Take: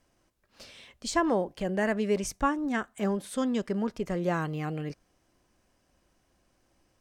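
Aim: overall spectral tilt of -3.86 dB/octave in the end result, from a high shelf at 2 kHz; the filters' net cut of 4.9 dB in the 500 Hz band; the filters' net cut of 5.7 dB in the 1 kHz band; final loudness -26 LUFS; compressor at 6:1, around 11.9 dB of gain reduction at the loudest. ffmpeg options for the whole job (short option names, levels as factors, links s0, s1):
-af "equalizer=f=500:t=o:g=-5,equalizer=f=1000:t=o:g=-8,highshelf=f=2000:g=9,acompressor=threshold=0.0141:ratio=6,volume=5.31"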